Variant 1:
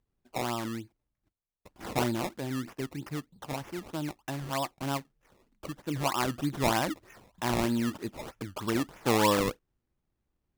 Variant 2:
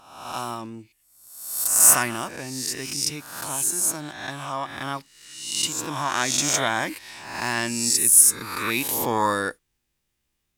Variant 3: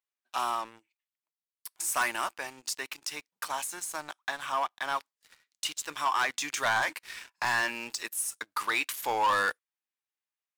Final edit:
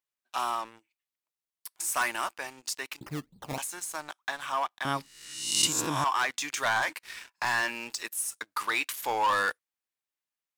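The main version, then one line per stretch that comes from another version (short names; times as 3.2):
3
3.01–3.58 from 1
4.85–6.04 from 2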